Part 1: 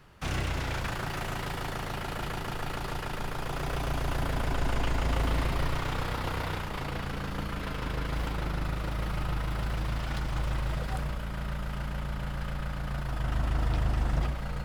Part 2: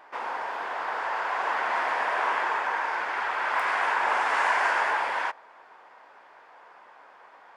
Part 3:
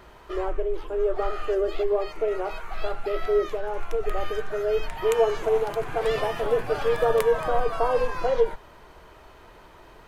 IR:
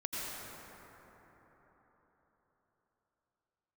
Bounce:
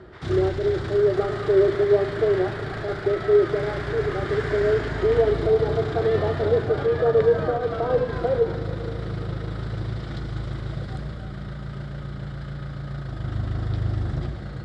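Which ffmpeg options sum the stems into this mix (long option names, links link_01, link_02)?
-filter_complex "[0:a]volume=-4dB,asplit=2[link_01][link_02];[link_02]volume=-8.5dB[link_03];[1:a]highpass=1500,volume=-5dB[link_04];[2:a]lowpass=2200,bandreject=frequency=1100:width=12,volume=0dB,asplit=2[link_05][link_06];[link_06]volume=-14.5dB[link_07];[link_01][link_05]amix=inputs=2:normalize=0,lowshelf=frequency=190:gain=11.5,alimiter=limit=-10.5dB:level=0:latency=1:release=57,volume=0dB[link_08];[3:a]atrim=start_sample=2205[link_09];[link_03][link_07]amix=inputs=2:normalize=0[link_10];[link_10][link_09]afir=irnorm=-1:irlink=0[link_11];[link_04][link_08][link_11]amix=inputs=3:normalize=0,highpass=100,equalizer=frequency=100:width_type=q:width=4:gain=8,equalizer=frequency=360:width_type=q:width=4:gain=8,equalizer=frequency=940:width_type=q:width=4:gain=-9,equalizer=frequency=2600:width_type=q:width=4:gain=-10,equalizer=frequency=3800:width_type=q:width=4:gain=5,equalizer=frequency=6300:width_type=q:width=4:gain=-7,lowpass=frequency=7500:width=0.5412,lowpass=frequency=7500:width=1.3066"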